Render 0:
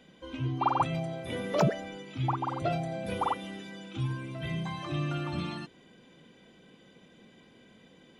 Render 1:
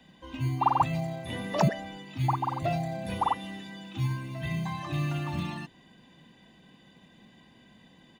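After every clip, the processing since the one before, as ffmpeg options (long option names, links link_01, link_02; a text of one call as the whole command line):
ffmpeg -i in.wav -filter_complex "[0:a]aecho=1:1:1.1:0.55,acrossover=split=160|1200|1700[link_01][link_02][link_03][link_04];[link_01]acrusher=samples=20:mix=1:aa=0.000001[link_05];[link_05][link_02][link_03][link_04]amix=inputs=4:normalize=0" out.wav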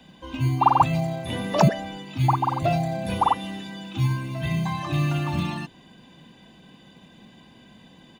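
ffmpeg -i in.wav -af "bandreject=frequency=1900:width=9.6,volume=6.5dB" out.wav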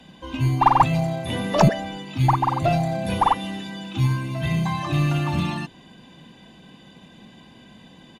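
ffmpeg -i in.wav -filter_complex "[0:a]asplit=2[link_01][link_02];[link_02]aeval=exprs='clip(val(0),-1,0.0596)':channel_layout=same,volume=-5dB[link_03];[link_01][link_03]amix=inputs=2:normalize=0,aresample=32000,aresample=44100,volume=-1dB" out.wav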